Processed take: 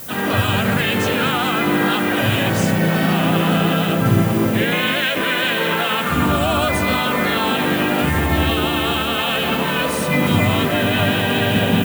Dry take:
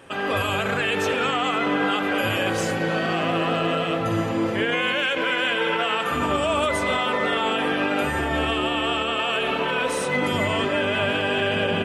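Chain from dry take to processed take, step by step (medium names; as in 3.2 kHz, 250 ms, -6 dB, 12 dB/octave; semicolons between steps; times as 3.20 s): added noise violet -37 dBFS; resonant low shelf 270 Hz +7 dB, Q 1.5; harmony voices +3 st -4 dB; trim +2.5 dB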